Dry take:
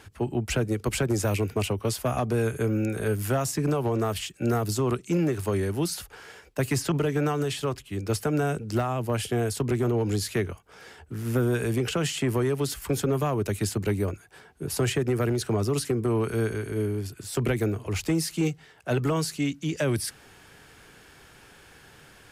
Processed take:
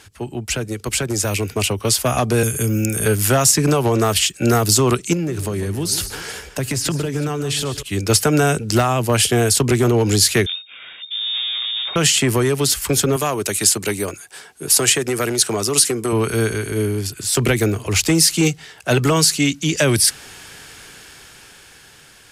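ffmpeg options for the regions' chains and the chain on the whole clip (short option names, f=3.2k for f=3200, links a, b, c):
-filter_complex "[0:a]asettb=1/sr,asplit=3[a][b][c];[a]atrim=end=2.434[d];[b]atrim=start=2.43:end=3.06,asetpts=PTS-STARTPTS,afade=t=in:d=0.004:c=qsin,afade=t=out:st=0.626:d=0.004:c=qsin,highshelf=f=9.4k:g=11.5,acrossover=split=290|3000[e][f][g];[f]acompressor=threshold=-41dB:ratio=3:attack=3.2:release=140:knee=2.83:detection=peak[h];[e][h][g]amix=inputs=3:normalize=0,asuperstop=centerf=4000:order=8:qfactor=4.7[i];[c]atrim=start=3.056[j];[d][i]acrossfade=d=0.004:c1=hsin:c2=qsin[k];[k][j]acrossfade=d=0.004:c1=qsin:c2=hsin,asettb=1/sr,asplit=3[l][m][n];[l]atrim=end=5.134[o];[m]atrim=start=5.13:end=7.83,asetpts=PTS-STARTPTS,afade=t=in:d=0.004:c=qsin,afade=t=out:st=2.696:d=0.004:c=qsin,lowshelf=f=420:g=8,acompressor=threshold=-35dB:ratio=2.5:attack=3.2:release=140:knee=1:detection=peak,aecho=1:1:146|371:0.224|0.133,atrim=end_sample=119070[p];[n]atrim=start=7.826[q];[o][p]acrossfade=d=0.004:c1=hsin:c2=qsin[r];[r][q]acrossfade=d=0.004:c1=qsin:c2=hsin,asettb=1/sr,asplit=3[s][t][u];[s]atrim=end=10.464[v];[t]atrim=start=10.46:end=11.96,asetpts=PTS-STARTPTS,afade=t=in:d=0.004:c=qsin,afade=t=out:st=1.496:d=0.004:c=qsin,aecho=1:1:0.9:0.48,atrim=end_sample=66150,aeval=exprs='(tanh(100*val(0)+0.7)-tanh(0.7))/100':c=same,lowpass=f=3.1k:t=q:w=0.5098,lowpass=f=3.1k:t=q:w=0.6013,lowpass=f=3.1k:t=q:w=0.9,lowpass=f=3.1k:t=q:w=2.563,afreqshift=-3700[w];[u]atrim=start=11.956[x];[v][w]acrossfade=d=0.004:c1=hsin:c2=qsin[y];[y][x]acrossfade=d=0.004:c1=qsin:c2=hsin,asettb=1/sr,asplit=3[z][aa][ab];[z]atrim=end=13.164[ac];[aa]atrim=start=13.16:end=16.13,asetpts=PTS-STARTPTS,afade=t=in:d=0.004:c=qsin,afade=t=out:st=2.966:d=0.004:c=qsin,highpass=f=310:p=1,equalizer=f=9.1k:w=0.91:g=4.5[ad];[ab]atrim=start=16.126[ae];[ac][ad]acrossfade=d=0.004:c1=hsin:c2=qsin[af];[af][ae]acrossfade=d=0.004:c1=qsin:c2=hsin,equalizer=f=7k:w=0.31:g=10.5,dynaudnorm=f=380:g=9:m=11.5dB"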